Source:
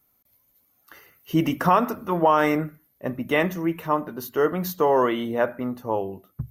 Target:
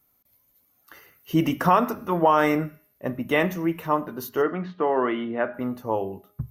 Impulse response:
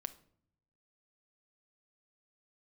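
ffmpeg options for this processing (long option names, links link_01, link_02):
-filter_complex "[0:a]asplit=3[link_01][link_02][link_03];[link_01]afade=type=out:start_time=4.41:duration=0.02[link_04];[link_02]highpass=130,equalizer=frequency=140:width_type=q:width=4:gain=-9,equalizer=frequency=510:width_type=q:width=4:gain=-7,equalizer=frequency=960:width_type=q:width=4:gain=-5,lowpass=frequency=2800:width=0.5412,lowpass=frequency=2800:width=1.3066,afade=type=in:start_time=4.41:duration=0.02,afade=type=out:start_time=5.53:duration=0.02[link_05];[link_03]afade=type=in:start_time=5.53:duration=0.02[link_06];[link_04][link_05][link_06]amix=inputs=3:normalize=0,bandreject=frequency=205.9:width_type=h:width=4,bandreject=frequency=411.8:width_type=h:width=4,bandreject=frequency=617.7:width_type=h:width=4,bandreject=frequency=823.6:width_type=h:width=4,bandreject=frequency=1029.5:width_type=h:width=4,bandreject=frequency=1235.4:width_type=h:width=4,bandreject=frequency=1441.3:width_type=h:width=4,bandreject=frequency=1647.2:width_type=h:width=4,bandreject=frequency=1853.1:width_type=h:width=4,bandreject=frequency=2059:width_type=h:width=4,bandreject=frequency=2264.9:width_type=h:width=4,bandreject=frequency=2470.8:width_type=h:width=4,bandreject=frequency=2676.7:width_type=h:width=4,bandreject=frequency=2882.6:width_type=h:width=4,bandreject=frequency=3088.5:width_type=h:width=4,bandreject=frequency=3294.4:width_type=h:width=4,bandreject=frequency=3500.3:width_type=h:width=4,bandreject=frequency=3706.2:width_type=h:width=4,bandreject=frequency=3912.1:width_type=h:width=4,bandreject=frequency=4118:width_type=h:width=4,bandreject=frequency=4323.9:width_type=h:width=4,bandreject=frequency=4529.8:width_type=h:width=4,bandreject=frequency=4735.7:width_type=h:width=4,bandreject=frequency=4941.6:width_type=h:width=4,bandreject=frequency=5147.5:width_type=h:width=4,bandreject=frequency=5353.4:width_type=h:width=4,bandreject=frequency=5559.3:width_type=h:width=4,bandreject=frequency=5765.2:width_type=h:width=4,bandreject=frequency=5971.1:width_type=h:width=4,bandreject=frequency=6177:width_type=h:width=4"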